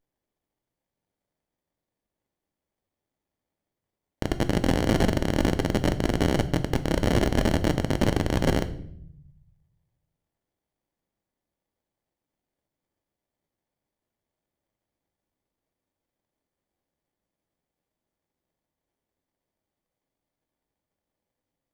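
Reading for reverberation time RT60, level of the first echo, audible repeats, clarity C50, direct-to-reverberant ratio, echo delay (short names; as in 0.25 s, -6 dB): 0.70 s, none, none, 14.5 dB, 9.0 dB, none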